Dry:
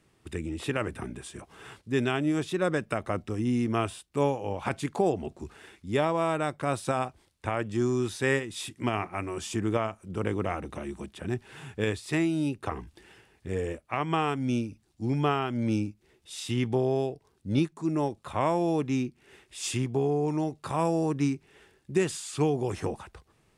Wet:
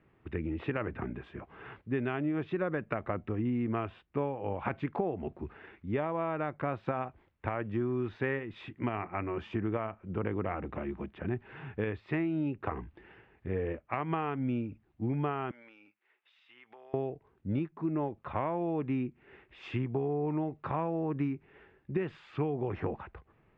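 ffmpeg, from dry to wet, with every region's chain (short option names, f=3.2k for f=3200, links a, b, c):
-filter_complex "[0:a]asettb=1/sr,asplit=3[a][b][c];[a]atrim=end=15.514[d];[b]atrim=start=15.51:end=16.94,asetpts=PTS-STARTPTS,afade=t=in:d=0.004:c=qsin,afade=t=out:st=1.426:d=0.004:c=qsin,highpass=1.2k,asoftclip=type=hard:threshold=-28.5dB,acompressor=threshold=-50dB:ratio=5:attack=3.2:release=140:knee=1:detection=peak[e];[c]atrim=start=16.936[f];[d][e]acrossfade=d=0.004:c1=hsin:c2=qsin[g];[g][f]acrossfade=d=0.004:c1=qsin:c2=hsin,lowpass=f=2.4k:w=0.5412,lowpass=f=2.4k:w=1.3066,acompressor=threshold=-28dB:ratio=6"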